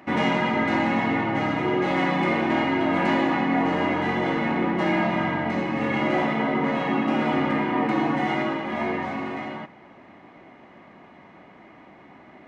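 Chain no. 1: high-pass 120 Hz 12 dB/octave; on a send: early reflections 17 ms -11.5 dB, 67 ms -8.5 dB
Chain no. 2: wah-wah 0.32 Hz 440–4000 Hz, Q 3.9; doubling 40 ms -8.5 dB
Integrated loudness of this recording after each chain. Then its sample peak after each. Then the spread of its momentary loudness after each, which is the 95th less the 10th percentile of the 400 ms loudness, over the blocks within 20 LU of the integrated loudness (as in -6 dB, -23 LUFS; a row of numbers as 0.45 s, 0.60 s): -23.5 LUFS, -34.5 LUFS; -9.5 dBFS, -19.0 dBFS; 5 LU, 10 LU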